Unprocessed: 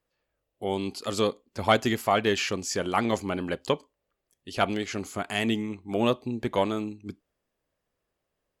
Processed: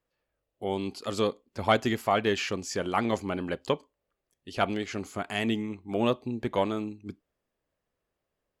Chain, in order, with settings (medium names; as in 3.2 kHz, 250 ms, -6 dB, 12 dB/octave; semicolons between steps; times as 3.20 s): treble shelf 4.7 kHz -5.5 dB; trim -1.5 dB